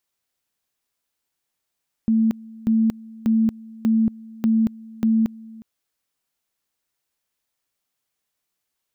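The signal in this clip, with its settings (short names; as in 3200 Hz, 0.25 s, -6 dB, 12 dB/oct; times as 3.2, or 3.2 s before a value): two-level tone 223 Hz -14.5 dBFS, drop 22.5 dB, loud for 0.23 s, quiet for 0.36 s, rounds 6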